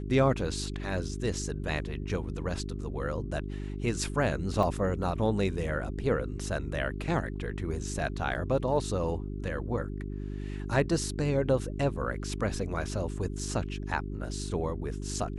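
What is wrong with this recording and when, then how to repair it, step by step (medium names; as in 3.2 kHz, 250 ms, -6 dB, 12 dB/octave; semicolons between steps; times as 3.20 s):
hum 50 Hz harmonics 8 -36 dBFS
4.63 s: dropout 2.8 ms
8.34–8.35 s: dropout 9.1 ms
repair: de-hum 50 Hz, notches 8; interpolate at 4.63 s, 2.8 ms; interpolate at 8.34 s, 9.1 ms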